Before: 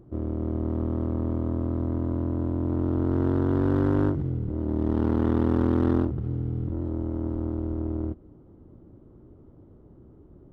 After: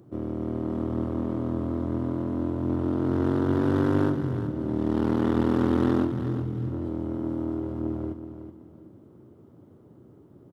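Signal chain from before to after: high-pass 100 Hz 24 dB/octave; treble shelf 2.2 kHz +10 dB; feedback delay 374 ms, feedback 29%, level -10 dB

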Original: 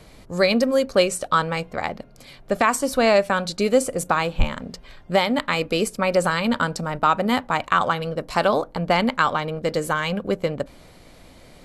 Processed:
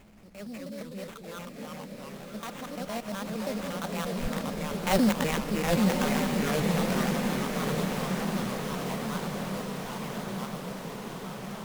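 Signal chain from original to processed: time reversed locally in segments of 122 ms; Doppler pass-by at 4.88 s, 18 m/s, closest 4.3 m; peaking EQ 210 Hz +14 dB 0.27 oct; upward compressor, threshold -45 dBFS; transient shaper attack -6 dB, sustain +3 dB; in parallel at +2 dB: compression, threshold -36 dBFS, peak gain reduction 19 dB; on the sum: sample-rate reducer 4.9 kHz, jitter 20%; ever faster or slower copies 171 ms, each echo -2 st, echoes 2; echo that smears into a reverb 1134 ms, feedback 63%, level -3.5 dB; trim -5 dB

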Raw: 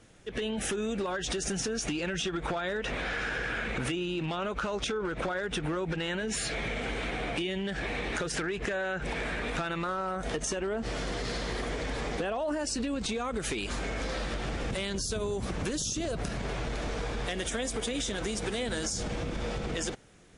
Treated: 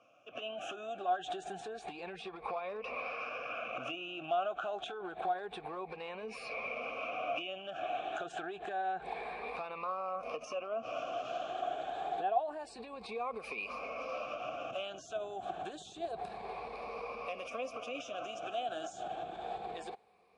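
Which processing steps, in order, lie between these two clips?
drifting ripple filter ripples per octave 0.9, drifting +0.28 Hz, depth 13 dB; vowel filter a; trim +4.5 dB

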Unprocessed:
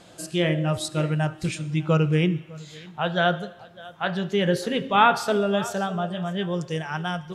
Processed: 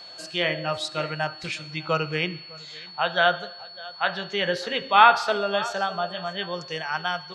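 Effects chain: three-band isolator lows -16 dB, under 580 Hz, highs -20 dB, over 5.7 kHz; whistle 4.4 kHz -45 dBFS; trim +4 dB

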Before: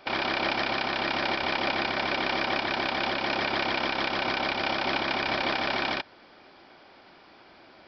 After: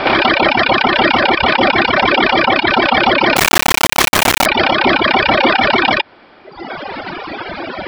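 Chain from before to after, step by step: reverb removal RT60 1.5 s; low-pass 3.4 kHz 12 dB/octave; reverb removal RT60 1.1 s; compression 4:1, threshold -38 dBFS, peak gain reduction 10.5 dB; 3.36–4.46 s: word length cut 6-bit, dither none; loudness maximiser +35 dB; trim -1 dB

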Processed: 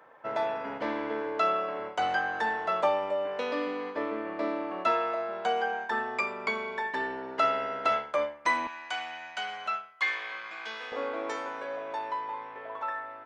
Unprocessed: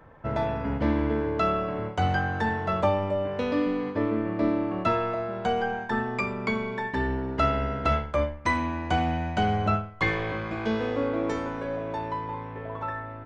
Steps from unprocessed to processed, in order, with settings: high-pass 510 Hz 12 dB/octave, from 8.67 s 1.4 kHz, from 10.92 s 640 Hz

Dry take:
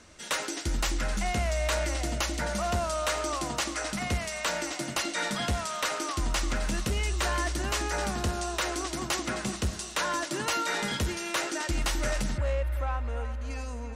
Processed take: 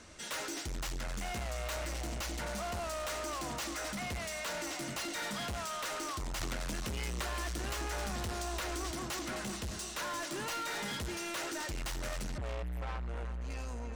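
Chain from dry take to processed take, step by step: saturation -36 dBFS, distortion -7 dB; 6.41–8.91 s: three bands compressed up and down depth 100%

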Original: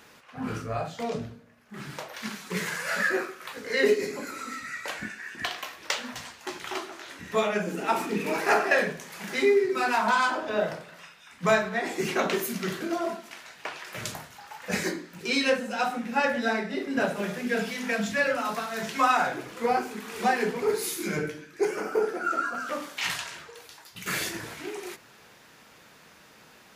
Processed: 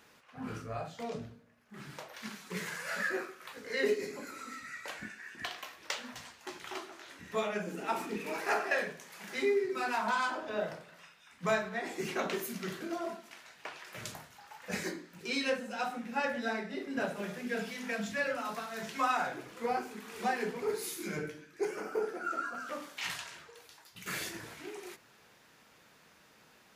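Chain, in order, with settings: 8.16–9.36 s: bass shelf 250 Hz -7 dB; trim -8 dB

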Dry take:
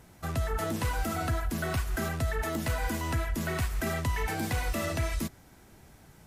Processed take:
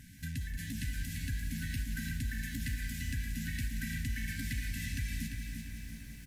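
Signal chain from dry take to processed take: FFT band-reject 300–1500 Hz; compression 2.5:1, threshold -43 dBFS, peak gain reduction 11.5 dB; on a send: feedback delay 344 ms, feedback 43%, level -7 dB; on the sum: bit-crushed delay 181 ms, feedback 80%, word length 10-bit, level -11 dB; trim +2.5 dB

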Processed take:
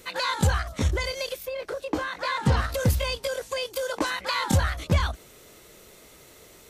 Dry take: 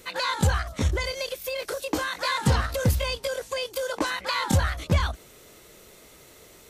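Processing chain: 1.44–2.56 s: low-pass 1.3 kHz -> 3.2 kHz 6 dB/octave

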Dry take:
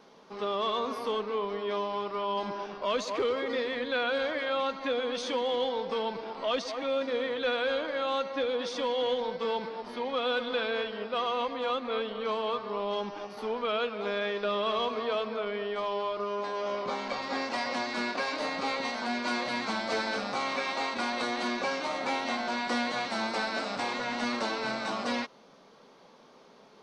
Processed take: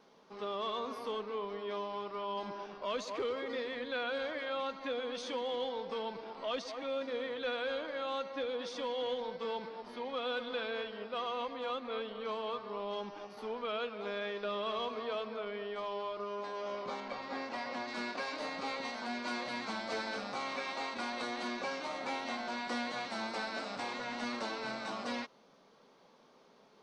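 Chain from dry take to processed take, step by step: 17.00–17.88 s: low-pass 3.3 kHz 6 dB/octave; trim -7 dB

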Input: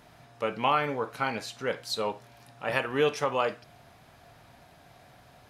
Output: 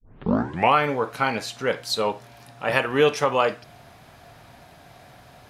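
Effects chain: tape start-up on the opening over 0.75 s; trim +6.5 dB

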